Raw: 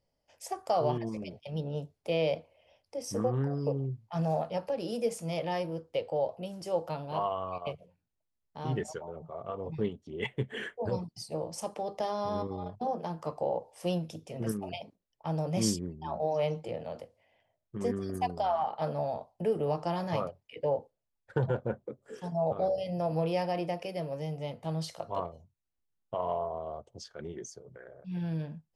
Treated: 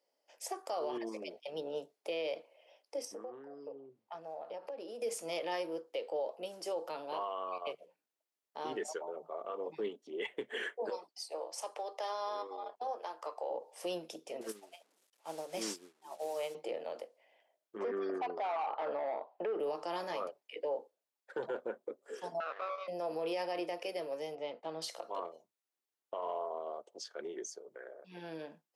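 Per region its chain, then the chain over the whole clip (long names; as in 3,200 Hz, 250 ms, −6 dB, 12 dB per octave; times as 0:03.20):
0:03.05–0:05.02: downward compressor 12 to 1, threshold −39 dBFS + high-shelf EQ 3,600 Hz −9.5 dB
0:10.90–0:13.51: high-pass filter 610 Hz + high-shelf EQ 6,600 Hz −5 dB
0:14.41–0:16.55: linear delta modulator 64 kbit/s, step −42.5 dBFS + high-shelf EQ 4,600 Hz +4.5 dB + expander for the loud parts 2.5 to 1, over −43 dBFS
0:17.78–0:19.60: low-pass filter 2,900 Hz + mid-hump overdrive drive 15 dB, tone 1,700 Hz, clips at −19 dBFS
0:22.40–0:22.88: lower of the sound and its delayed copy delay 0.46 ms + high-pass filter 920 Hz + high-frequency loss of the air 270 metres
0:24.35–0:24.82: downward expander −49 dBFS + high-frequency loss of the air 140 metres
whole clip: high-pass filter 330 Hz 24 dB per octave; dynamic equaliser 700 Hz, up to −5 dB, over −41 dBFS, Q 1.6; brickwall limiter −29.5 dBFS; level +1 dB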